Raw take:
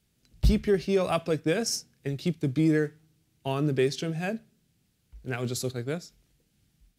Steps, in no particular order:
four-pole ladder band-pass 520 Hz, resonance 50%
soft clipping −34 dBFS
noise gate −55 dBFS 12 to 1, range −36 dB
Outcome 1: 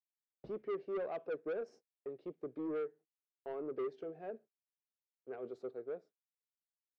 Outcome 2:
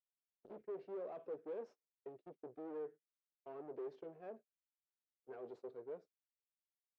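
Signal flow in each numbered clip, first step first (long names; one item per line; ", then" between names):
four-pole ladder band-pass, then noise gate, then soft clipping
soft clipping, then four-pole ladder band-pass, then noise gate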